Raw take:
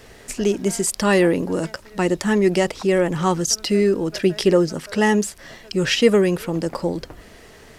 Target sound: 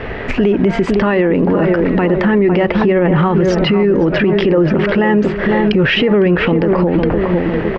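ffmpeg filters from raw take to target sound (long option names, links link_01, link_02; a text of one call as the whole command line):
ffmpeg -i in.wav -filter_complex "[0:a]lowpass=frequency=2600:width=0.5412,lowpass=frequency=2600:width=1.3066,acompressor=threshold=-24dB:ratio=2.5,asplit=2[link_01][link_02];[link_02]adelay=505,lowpass=frequency=1300:poles=1,volume=-8.5dB,asplit=2[link_03][link_04];[link_04]adelay=505,lowpass=frequency=1300:poles=1,volume=0.52,asplit=2[link_05][link_06];[link_06]adelay=505,lowpass=frequency=1300:poles=1,volume=0.52,asplit=2[link_07][link_08];[link_08]adelay=505,lowpass=frequency=1300:poles=1,volume=0.52,asplit=2[link_09][link_10];[link_10]adelay=505,lowpass=frequency=1300:poles=1,volume=0.52,asplit=2[link_11][link_12];[link_12]adelay=505,lowpass=frequency=1300:poles=1,volume=0.52[link_13];[link_01][link_03][link_05][link_07][link_09][link_11][link_13]amix=inputs=7:normalize=0,alimiter=level_in=26dB:limit=-1dB:release=50:level=0:latency=1,volume=-4.5dB" out.wav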